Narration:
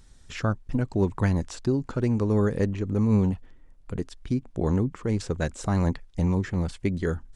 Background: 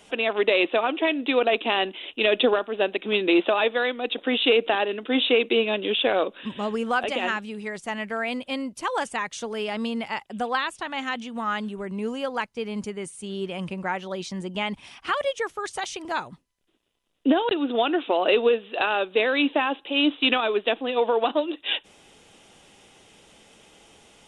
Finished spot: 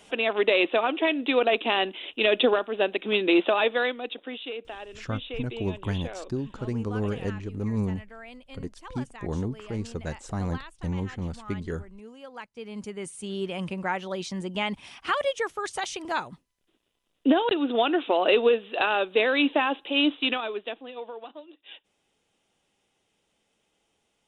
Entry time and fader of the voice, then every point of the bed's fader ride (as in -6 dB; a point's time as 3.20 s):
4.65 s, -6.0 dB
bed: 3.85 s -1 dB
4.46 s -16.5 dB
12.17 s -16.5 dB
13.12 s -0.5 dB
19.98 s -0.5 dB
21.32 s -20 dB